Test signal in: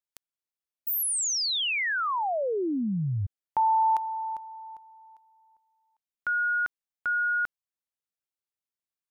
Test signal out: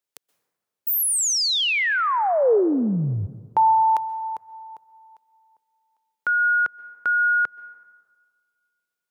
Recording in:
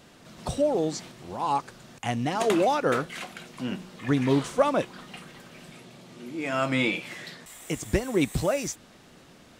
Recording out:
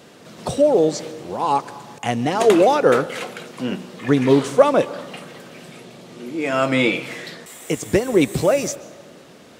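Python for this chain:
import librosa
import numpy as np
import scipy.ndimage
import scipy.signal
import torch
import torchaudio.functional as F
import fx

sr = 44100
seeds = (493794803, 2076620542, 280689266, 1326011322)

y = scipy.signal.sosfilt(scipy.signal.butter(2, 110.0, 'highpass', fs=sr, output='sos'), x)
y = fx.peak_eq(y, sr, hz=460.0, db=6.0, octaves=0.67)
y = fx.rev_plate(y, sr, seeds[0], rt60_s=1.6, hf_ratio=0.45, predelay_ms=115, drr_db=18.0)
y = F.gain(torch.from_numpy(y), 6.0).numpy()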